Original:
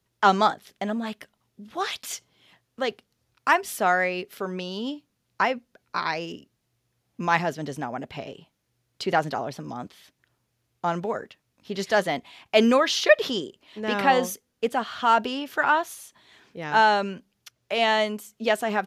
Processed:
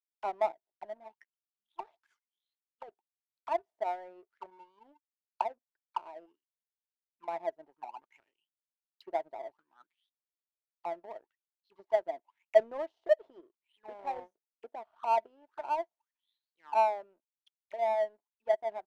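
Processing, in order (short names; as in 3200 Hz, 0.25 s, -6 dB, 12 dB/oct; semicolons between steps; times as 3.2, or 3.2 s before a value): auto-wah 660–4900 Hz, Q 14, down, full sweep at -26 dBFS; small resonant body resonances 340/900 Hz, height 16 dB, ringing for 45 ms; power-law curve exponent 1.4; gain +1.5 dB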